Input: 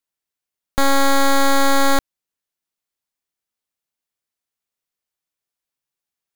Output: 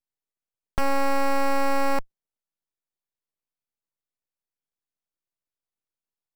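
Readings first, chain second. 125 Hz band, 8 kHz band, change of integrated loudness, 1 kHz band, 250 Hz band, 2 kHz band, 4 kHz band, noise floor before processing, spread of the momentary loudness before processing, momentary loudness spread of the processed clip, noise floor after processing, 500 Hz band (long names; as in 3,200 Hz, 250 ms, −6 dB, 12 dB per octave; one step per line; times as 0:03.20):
−5.5 dB, −16.0 dB, −8.0 dB, −7.0 dB, −8.5 dB, −9.5 dB, −15.5 dB, below −85 dBFS, 6 LU, 6 LU, below −85 dBFS, −5.5 dB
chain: harmonic generator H 2 −12 dB, 6 −18 dB, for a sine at −12.5 dBFS
in parallel at −5.5 dB: hard clipping −17.5 dBFS, distortion −6 dB
on the sum: tilt shelving filter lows +8 dB, about 880 Hz
full-wave rectification
level −6.5 dB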